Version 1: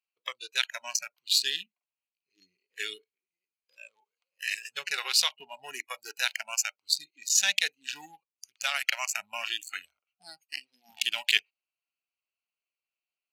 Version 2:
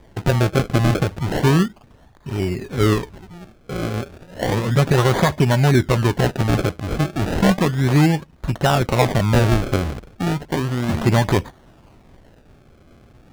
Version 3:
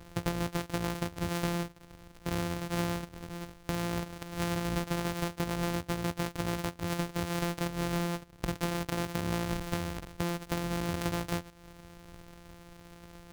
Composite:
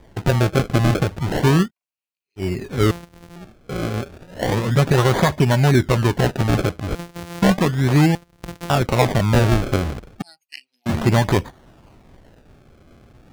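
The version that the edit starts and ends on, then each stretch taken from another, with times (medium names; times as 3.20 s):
2
1.66–2.41 s: from 1, crossfade 0.10 s
2.91–3.36 s: from 3
6.95–7.42 s: from 3
8.15–8.70 s: from 3
10.22–10.86 s: from 1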